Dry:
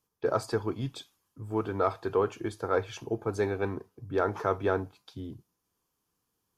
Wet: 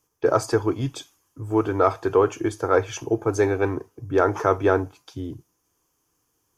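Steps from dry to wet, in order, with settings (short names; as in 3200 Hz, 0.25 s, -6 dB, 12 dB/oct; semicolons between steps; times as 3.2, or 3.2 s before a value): thirty-one-band EQ 200 Hz -11 dB, 315 Hz +4 dB, 4000 Hz -8 dB, 6300 Hz +7 dB; gain +8 dB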